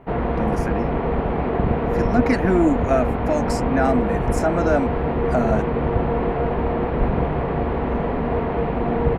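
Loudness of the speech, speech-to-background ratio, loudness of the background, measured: −23.5 LKFS, −1.0 dB, −22.5 LKFS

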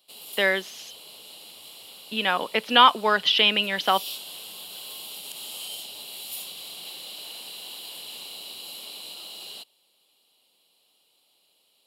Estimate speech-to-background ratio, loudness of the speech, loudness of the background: 16.5 dB, −21.0 LKFS, −37.5 LKFS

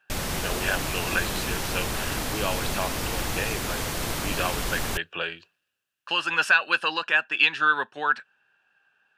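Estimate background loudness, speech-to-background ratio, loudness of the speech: −29.0 LKFS, 2.5 dB, −26.5 LKFS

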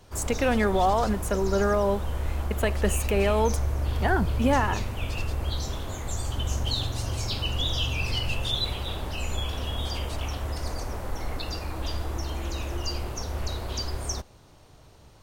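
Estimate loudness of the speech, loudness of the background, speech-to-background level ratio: −26.0 LKFS, −31.0 LKFS, 5.0 dB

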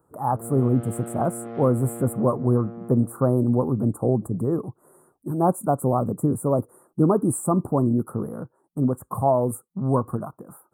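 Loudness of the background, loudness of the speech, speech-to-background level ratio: −37.5 LKFS, −23.5 LKFS, 14.0 dB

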